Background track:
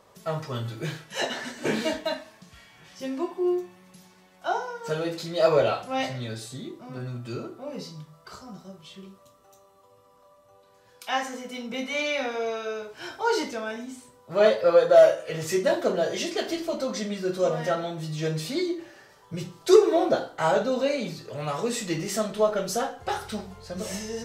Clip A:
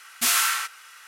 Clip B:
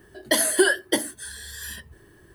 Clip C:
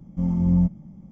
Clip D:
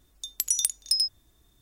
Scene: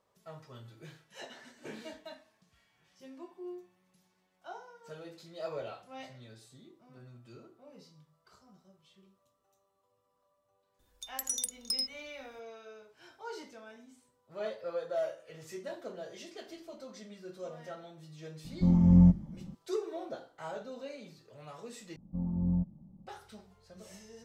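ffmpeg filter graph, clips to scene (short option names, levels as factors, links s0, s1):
-filter_complex "[3:a]asplit=2[s0][s1];[0:a]volume=0.119[s2];[4:a]asoftclip=type=tanh:threshold=0.251[s3];[s0]bandreject=f=50:t=h:w=6,bandreject=f=100:t=h:w=6,bandreject=f=150:t=h:w=6,bandreject=f=200:t=h:w=6,bandreject=f=250:t=h:w=6,bandreject=f=300:t=h:w=6,bandreject=f=350:t=h:w=6,bandreject=f=400:t=h:w=6[s4];[s1]lowpass=f=1100:w=0.5412,lowpass=f=1100:w=1.3066[s5];[s2]asplit=2[s6][s7];[s6]atrim=end=21.964[s8];[s5]atrim=end=1.11,asetpts=PTS-STARTPTS,volume=0.282[s9];[s7]atrim=start=23.066[s10];[s3]atrim=end=1.61,asetpts=PTS-STARTPTS,volume=0.398,afade=t=in:d=0.004:c=hsin,afade=t=out:st=1.606:d=0.004:c=hsin,adelay=10790[s11];[s4]atrim=end=1.11,asetpts=PTS-STARTPTS,volume=0.944,afade=t=in:d=0.004:c=hsin,afade=t=out:st=1.106:d=0.004:c=hsin,adelay=813204S[s12];[s8][s9]acrossfade=d=0.004:c1=hsin:c2=hsin[s13];[s13][s10]acrossfade=d=0.004:c1=hsin:c2=hsin[s14];[s14][s11][s12]amix=inputs=3:normalize=0"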